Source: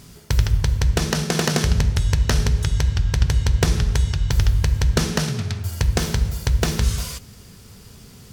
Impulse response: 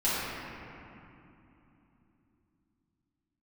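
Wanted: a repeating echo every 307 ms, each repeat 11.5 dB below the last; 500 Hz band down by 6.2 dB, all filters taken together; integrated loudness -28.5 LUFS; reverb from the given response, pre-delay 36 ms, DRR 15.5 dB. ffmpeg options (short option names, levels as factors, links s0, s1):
-filter_complex "[0:a]equalizer=f=500:t=o:g=-8,aecho=1:1:307|614|921:0.266|0.0718|0.0194,asplit=2[s0][s1];[1:a]atrim=start_sample=2205,adelay=36[s2];[s1][s2]afir=irnorm=-1:irlink=0,volume=0.0398[s3];[s0][s3]amix=inputs=2:normalize=0,volume=0.422"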